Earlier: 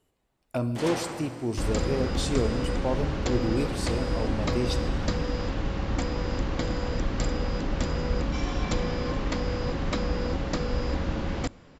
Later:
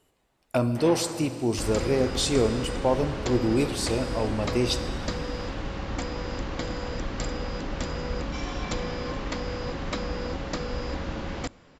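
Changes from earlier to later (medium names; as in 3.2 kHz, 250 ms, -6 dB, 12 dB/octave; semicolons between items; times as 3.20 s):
speech +7.0 dB; first sound: add distance through air 430 m; master: add bass shelf 360 Hz -5 dB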